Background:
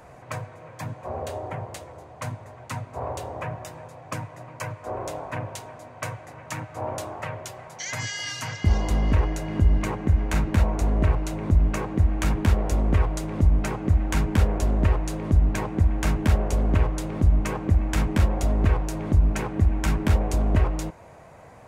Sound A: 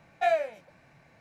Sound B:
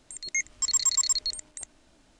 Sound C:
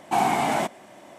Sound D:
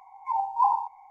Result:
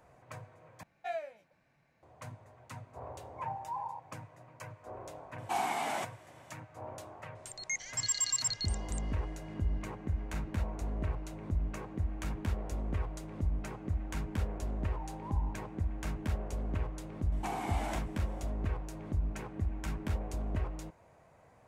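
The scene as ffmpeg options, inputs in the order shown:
-filter_complex "[4:a]asplit=2[s0][s1];[3:a]asplit=2[s2][s3];[0:a]volume=0.2[s4];[s0]alimiter=limit=0.0794:level=0:latency=1:release=71[s5];[s2]lowshelf=f=380:g=-12[s6];[s1]acompressor=threshold=0.0316:ratio=6:attack=3.2:release=140:knee=1:detection=peak[s7];[s3]acompressor=threshold=0.0708:ratio=6:attack=3.2:release=140:knee=1:detection=peak[s8];[s4]asplit=2[s9][s10];[s9]atrim=end=0.834[s11];[1:a]atrim=end=1.2,asetpts=PTS-STARTPTS,volume=0.224[s12];[s10]atrim=start=2.026[s13];[s5]atrim=end=1.1,asetpts=PTS-STARTPTS,volume=0.335,afade=t=in:d=0.004:c=hsin,afade=t=out:st=1.096:d=0.004:c=hsin,adelay=3120[s14];[s6]atrim=end=1.18,asetpts=PTS-STARTPTS,volume=0.376,afade=t=in:d=0.004:c=hsin,afade=t=out:st=1.176:d=0.004:c=hsin,adelay=5380[s15];[2:a]atrim=end=2.19,asetpts=PTS-STARTPTS,volume=0.422,afade=t=in:d=0.004:c=hsin,afade=t=out:st=2.186:d=0.004:c=hsin,adelay=7350[s16];[s7]atrim=end=1.1,asetpts=PTS-STARTPTS,volume=0.2,afade=t=in:d=0.004:c=hsin,afade=t=out:st=1.096:d=0.004:c=hsin,adelay=14660[s17];[s8]atrim=end=1.18,asetpts=PTS-STARTPTS,volume=0.299,afade=t=in:d=0.004:c=hsin,afade=t=out:st=1.176:d=0.004:c=hsin,adelay=763812S[s18];[s11][s12]acrossfade=d=0.004:c1=hsin:c2=hsin[s19];[s19][s13]acrossfade=d=0.004:c1=hsin:c2=hsin[s20];[s20][s14][s15][s16][s17][s18]amix=inputs=6:normalize=0"

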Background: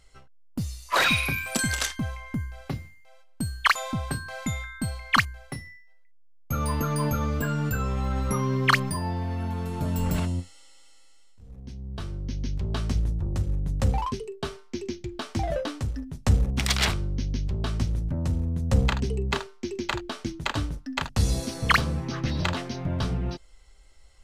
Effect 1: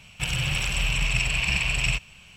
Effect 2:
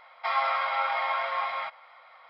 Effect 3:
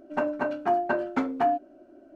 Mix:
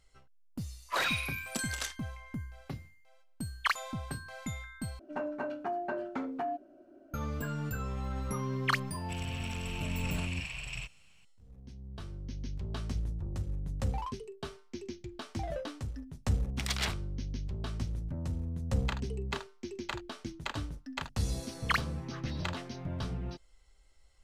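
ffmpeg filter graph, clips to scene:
-filter_complex "[0:a]volume=0.355[s0];[3:a]acompressor=threshold=0.0316:ratio=4:attack=9.9:release=24:knee=6:detection=peak[s1];[s0]asplit=2[s2][s3];[s2]atrim=end=4.994[s4];[s1]atrim=end=2.15,asetpts=PTS-STARTPTS,volume=0.562[s5];[s3]atrim=start=7.136[s6];[1:a]atrim=end=2.36,asetpts=PTS-STARTPTS,volume=0.158,afade=t=in:d=0.004:c=hsin,afade=t=out:st=2.356:d=0.004:c=hsin,adelay=8890[s7];[s4][s5]acrossfade=d=0.004:c1=hsin:c2=hsin[s8];[s8][s6]acrossfade=d=0.004:c1=hsin:c2=hsin[s9];[s9][s7]amix=inputs=2:normalize=0"

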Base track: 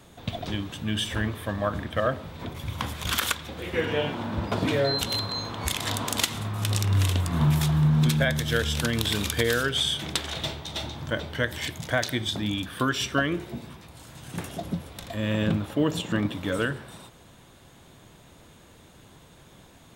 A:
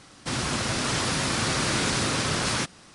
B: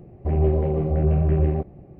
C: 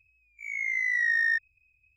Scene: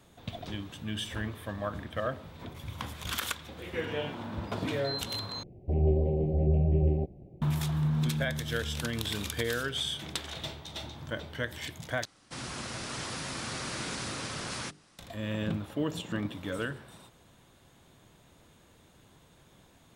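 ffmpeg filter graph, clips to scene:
-filter_complex "[0:a]volume=0.422[s0];[2:a]asuperstop=centerf=1400:order=4:qfactor=0.71[s1];[1:a]bandreject=f=50:t=h:w=6,bandreject=f=100:t=h:w=6,bandreject=f=150:t=h:w=6,bandreject=f=200:t=h:w=6,bandreject=f=250:t=h:w=6,bandreject=f=300:t=h:w=6,bandreject=f=350:t=h:w=6,bandreject=f=400:t=h:w=6,bandreject=f=450:t=h:w=6[s2];[s0]asplit=3[s3][s4][s5];[s3]atrim=end=5.434[s6];[s1]atrim=end=1.99,asetpts=PTS-STARTPTS,volume=0.531[s7];[s4]atrim=start=7.416:end=12.054[s8];[s2]atrim=end=2.94,asetpts=PTS-STARTPTS,volume=0.282[s9];[s5]atrim=start=14.986[s10];[s6][s7]acrossfade=d=0.004:c1=hsin:c2=hsin[s11];[s11][s8]acrossfade=d=0.004:c1=hsin:c2=hsin[s12];[s12][s9]acrossfade=d=0.004:c1=hsin:c2=hsin[s13];[s13][s10]acrossfade=d=0.004:c1=hsin:c2=hsin"

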